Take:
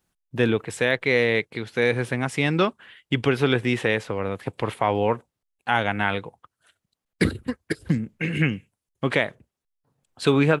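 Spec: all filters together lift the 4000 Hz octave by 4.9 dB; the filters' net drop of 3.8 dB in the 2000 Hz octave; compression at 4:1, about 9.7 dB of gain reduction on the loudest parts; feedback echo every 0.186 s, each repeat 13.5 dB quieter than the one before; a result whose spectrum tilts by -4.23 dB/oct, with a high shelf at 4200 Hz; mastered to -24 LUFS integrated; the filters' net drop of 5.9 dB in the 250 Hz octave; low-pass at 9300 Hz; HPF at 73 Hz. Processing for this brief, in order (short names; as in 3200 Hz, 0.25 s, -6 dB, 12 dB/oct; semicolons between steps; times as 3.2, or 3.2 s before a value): HPF 73 Hz; LPF 9300 Hz; bell 250 Hz -8 dB; bell 2000 Hz -7.5 dB; bell 4000 Hz +5 dB; high shelf 4200 Hz +7.5 dB; compressor 4:1, threshold -29 dBFS; feedback echo 0.186 s, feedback 21%, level -13.5 dB; gain +9.5 dB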